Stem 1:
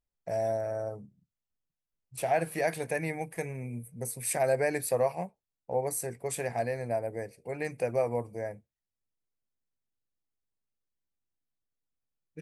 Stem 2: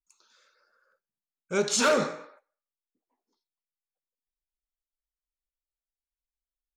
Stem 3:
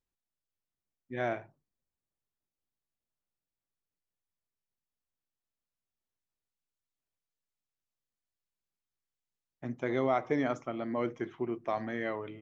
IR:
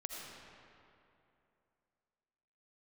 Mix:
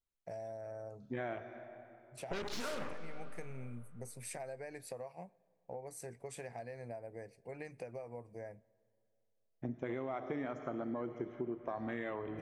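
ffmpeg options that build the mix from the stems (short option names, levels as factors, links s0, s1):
-filter_complex "[0:a]lowpass=7700,acompressor=threshold=0.02:ratio=10,volume=0.398,asplit=2[s0][s1];[s1]volume=0.0631[s2];[1:a]highshelf=f=4800:g=-10.5,aeval=exprs='0.158*(cos(1*acos(clip(val(0)/0.158,-1,1)))-cos(1*PI/2))+0.0398*(cos(6*acos(clip(val(0)/0.158,-1,1)))-cos(6*PI/2))+0.0631*(cos(8*acos(clip(val(0)/0.158,-1,1)))-cos(8*PI/2))':c=same,adelay=800,volume=0.708,asplit=2[s3][s4];[s4]volume=0.15[s5];[2:a]volume=1.26,asplit=2[s6][s7];[s7]volume=0.237[s8];[s3][s6]amix=inputs=2:normalize=0,afwtdn=0.0112,alimiter=limit=0.0668:level=0:latency=1,volume=1[s9];[3:a]atrim=start_sample=2205[s10];[s2][s5][s8]amix=inputs=3:normalize=0[s11];[s11][s10]afir=irnorm=-1:irlink=0[s12];[s0][s9][s12]amix=inputs=3:normalize=0,acompressor=threshold=0.0158:ratio=6"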